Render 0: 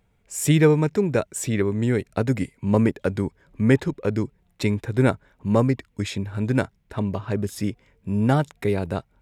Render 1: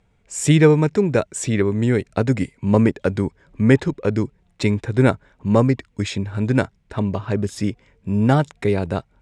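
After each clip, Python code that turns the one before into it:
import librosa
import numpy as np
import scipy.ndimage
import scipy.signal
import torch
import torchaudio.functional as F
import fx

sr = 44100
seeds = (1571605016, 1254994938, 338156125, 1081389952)

y = scipy.signal.sosfilt(scipy.signal.butter(4, 8900.0, 'lowpass', fs=sr, output='sos'), x)
y = y * librosa.db_to_amplitude(3.5)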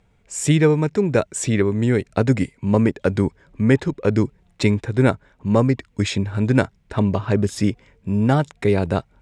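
y = fx.rider(x, sr, range_db=3, speed_s=0.5)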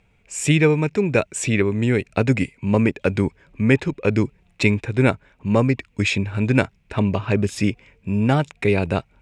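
y = fx.peak_eq(x, sr, hz=2500.0, db=11.5, octaves=0.4)
y = y * librosa.db_to_amplitude(-1.0)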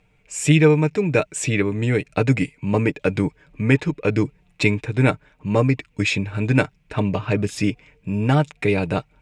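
y = x + 0.48 * np.pad(x, (int(6.6 * sr / 1000.0), 0))[:len(x)]
y = y * librosa.db_to_amplitude(-1.0)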